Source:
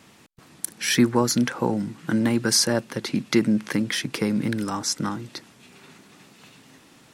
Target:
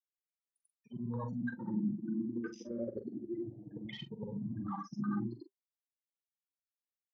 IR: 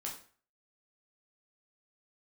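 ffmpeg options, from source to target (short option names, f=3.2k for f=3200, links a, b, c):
-filter_complex "[0:a]afftfilt=real='re':imag='-im':win_size=8192:overlap=0.75,areverse,acompressor=threshold=-39dB:ratio=10,areverse,afftfilt=real='re*gte(hypot(re,im),0.0251)':imag='im*gte(hypot(re,im),0.0251)':win_size=1024:overlap=0.75,equalizer=f=1.6k:w=3.8:g=6.5,asplit=2[a][b];[b]adynamicsmooth=sensitivity=2.5:basefreq=5k,volume=1.5dB[c];[a][c]amix=inputs=2:normalize=0,afwtdn=0.00398,adynamicequalizer=threshold=0.00158:dfrequency=160:dqfactor=5.1:tfrequency=160:tqfactor=5.1:attack=5:release=100:ratio=0.375:range=3:mode=cutabove:tftype=bell,flanger=delay=5.1:depth=1.7:regen=-56:speed=0.95:shape=sinusoidal,asplit=2[d][e];[e]adelay=43,volume=-10dB[f];[d][f]amix=inputs=2:normalize=0,asplit=2[g][h];[h]afreqshift=0.31[i];[g][i]amix=inputs=2:normalize=1,volume=5.5dB"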